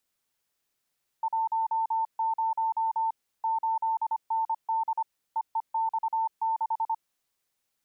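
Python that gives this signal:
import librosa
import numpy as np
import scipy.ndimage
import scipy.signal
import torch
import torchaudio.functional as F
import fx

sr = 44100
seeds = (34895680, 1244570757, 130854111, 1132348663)

y = fx.morse(sr, text='10 8ND EEX6', wpm=25, hz=896.0, level_db=-24.0)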